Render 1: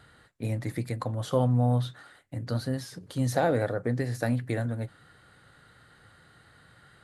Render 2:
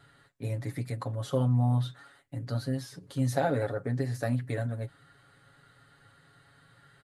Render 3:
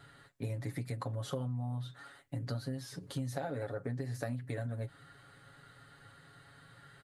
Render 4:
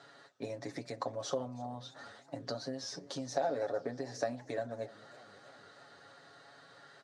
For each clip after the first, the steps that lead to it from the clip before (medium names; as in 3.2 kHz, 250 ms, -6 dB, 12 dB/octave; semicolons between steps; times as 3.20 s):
comb 7.2 ms, depth 87%; trim -5.5 dB
compression 10:1, threshold -36 dBFS, peak gain reduction 14.5 dB; trim +2 dB
cabinet simulation 320–6900 Hz, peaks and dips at 650 Hz +6 dB, 1.4 kHz -4 dB, 2.1 kHz -5 dB, 3 kHz -5 dB, 5.7 kHz +9 dB; modulated delay 318 ms, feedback 70%, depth 152 cents, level -22 dB; trim +4 dB